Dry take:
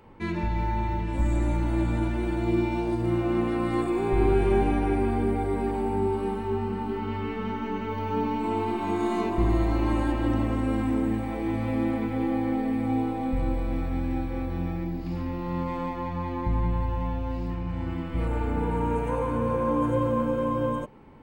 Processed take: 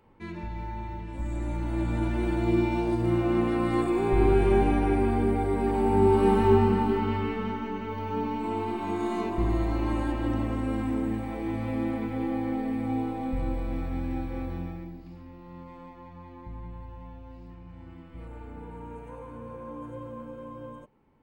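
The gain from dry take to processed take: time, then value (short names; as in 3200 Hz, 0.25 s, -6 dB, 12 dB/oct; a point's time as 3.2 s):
1.19 s -8.5 dB
2.22 s +0.5 dB
5.58 s +0.5 dB
6.45 s +9.5 dB
7.74 s -3 dB
14.5 s -3 dB
15.19 s -15 dB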